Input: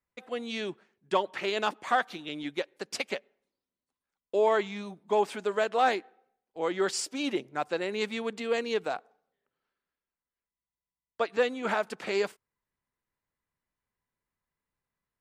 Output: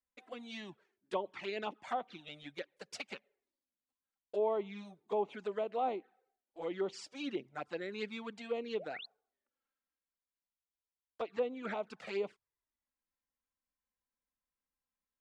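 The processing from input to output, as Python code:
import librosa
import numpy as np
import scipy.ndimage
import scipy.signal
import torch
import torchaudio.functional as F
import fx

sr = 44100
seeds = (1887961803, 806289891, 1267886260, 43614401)

y = fx.spec_paint(x, sr, seeds[0], shape='rise', start_s=8.79, length_s=0.27, low_hz=470.0, high_hz=4600.0, level_db=-37.0)
y = fx.env_lowpass_down(y, sr, base_hz=1700.0, full_db=-22.0)
y = fx.env_flanger(y, sr, rest_ms=3.8, full_db=-24.5)
y = F.gain(torch.from_numpy(y), -6.5).numpy()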